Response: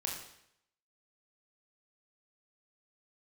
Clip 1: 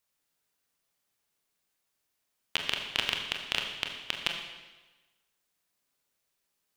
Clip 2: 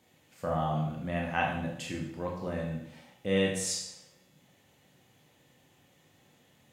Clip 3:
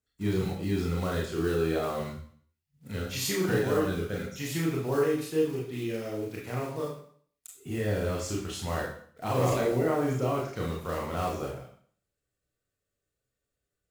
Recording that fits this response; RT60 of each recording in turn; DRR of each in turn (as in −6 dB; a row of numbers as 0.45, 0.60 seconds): 2; 1.2, 0.75, 0.55 seconds; 2.0, −1.0, −3.5 decibels